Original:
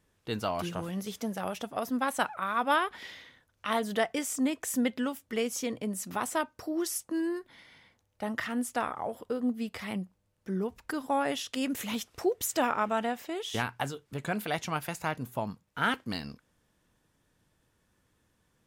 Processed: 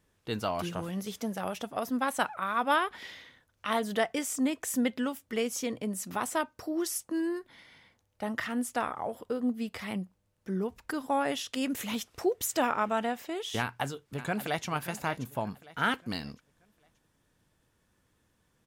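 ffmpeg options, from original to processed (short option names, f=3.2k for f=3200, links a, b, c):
-filter_complex "[0:a]asplit=2[a][b];[b]afade=t=in:st=13.6:d=0.01,afade=t=out:st=14.66:d=0.01,aecho=0:1:580|1160|1740|2320:0.223872|0.0895488|0.0358195|0.0143278[c];[a][c]amix=inputs=2:normalize=0"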